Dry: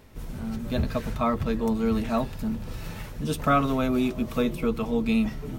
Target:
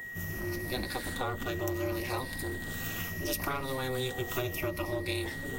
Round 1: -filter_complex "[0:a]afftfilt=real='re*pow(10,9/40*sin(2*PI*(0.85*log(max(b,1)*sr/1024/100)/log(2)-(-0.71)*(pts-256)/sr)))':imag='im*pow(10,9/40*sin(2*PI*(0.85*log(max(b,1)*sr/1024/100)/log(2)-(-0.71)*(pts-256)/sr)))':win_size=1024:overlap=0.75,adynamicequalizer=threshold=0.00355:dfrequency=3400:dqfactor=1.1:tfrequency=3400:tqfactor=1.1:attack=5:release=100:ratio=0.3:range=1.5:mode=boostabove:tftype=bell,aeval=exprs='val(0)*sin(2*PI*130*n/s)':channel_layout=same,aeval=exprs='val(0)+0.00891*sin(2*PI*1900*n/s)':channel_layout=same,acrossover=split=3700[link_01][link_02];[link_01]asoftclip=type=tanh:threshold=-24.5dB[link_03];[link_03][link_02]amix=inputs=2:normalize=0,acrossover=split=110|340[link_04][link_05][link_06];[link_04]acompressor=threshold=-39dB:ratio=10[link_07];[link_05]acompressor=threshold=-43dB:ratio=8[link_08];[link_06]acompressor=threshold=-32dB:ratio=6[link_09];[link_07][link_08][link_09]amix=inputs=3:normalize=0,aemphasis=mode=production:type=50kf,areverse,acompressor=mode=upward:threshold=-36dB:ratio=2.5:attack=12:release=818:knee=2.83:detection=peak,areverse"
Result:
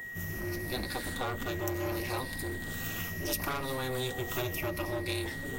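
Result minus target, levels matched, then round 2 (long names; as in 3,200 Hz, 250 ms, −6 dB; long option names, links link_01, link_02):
soft clipping: distortion +8 dB
-filter_complex "[0:a]afftfilt=real='re*pow(10,9/40*sin(2*PI*(0.85*log(max(b,1)*sr/1024/100)/log(2)-(-0.71)*(pts-256)/sr)))':imag='im*pow(10,9/40*sin(2*PI*(0.85*log(max(b,1)*sr/1024/100)/log(2)-(-0.71)*(pts-256)/sr)))':win_size=1024:overlap=0.75,adynamicequalizer=threshold=0.00355:dfrequency=3400:dqfactor=1.1:tfrequency=3400:tqfactor=1.1:attack=5:release=100:ratio=0.3:range=1.5:mode=boostabove:tftype=bell,aeval=exprs='val(0)*sin(2*PI*130*n/s)':channel_layout=same,aeval=exprs='val(0)+0.00891*sin(2*PI*1900*n/s)':channel_layout=same,acrossover=split=3700[link_01][link_02];[link_01]asoftclip=type=tanh:threshold=-17dB[link_03];[link_03][link_02]amix=inputs=2:normalize=0,acrossover=split=110|340[link_04][link_05][link_06];[link_04]acompressor=threshold=-39dB:ratio=10[link_07];[link_05]acompressor=threshold=-43dB:ratio=8[link_08];[link_06]acompressor=threshold=-32dB:ratio=6[link_09];[link_07][link_08][link_09]amix=inputs=3:normalize=0,aemphasis=mode=production:type=50kf,areverse,acompressor=mode=upward:threshold=-36dB:ratio=2.5:attack=12:release=818:knee=2.83:detection=peak,areverse"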